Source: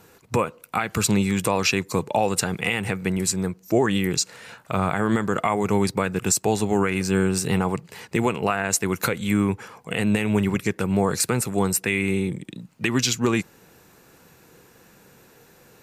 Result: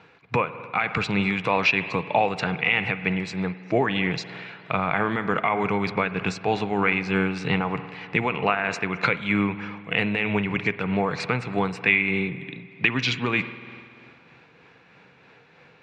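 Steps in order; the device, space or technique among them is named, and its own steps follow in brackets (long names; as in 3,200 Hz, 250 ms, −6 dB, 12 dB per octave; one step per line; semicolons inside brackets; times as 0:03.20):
combo amplifier with spring reverb and tremolo (spring reverb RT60 2.3 s, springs 49 ms, chirp 60 ms, DRR 12 dB; amplitude tremolo 3.2 Hz, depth 33%; loudspeaker in its box 97–3,800 Hz, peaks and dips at 100 Hz −6 dB, 220 Hz −7 dB, 360 Hz −8 dB, 550 Hz −3 dB, 2,300 Hz +7 dB)
level +2.5 dB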